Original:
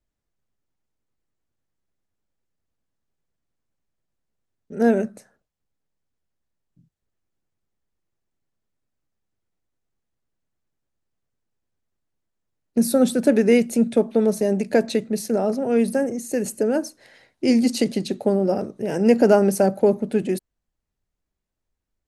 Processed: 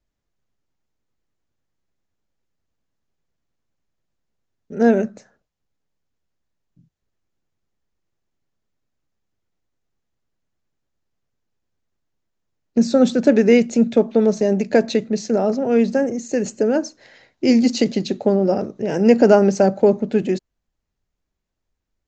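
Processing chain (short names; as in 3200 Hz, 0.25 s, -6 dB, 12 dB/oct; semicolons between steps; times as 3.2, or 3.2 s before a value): downsampling 16000 Hz; gain +3 dB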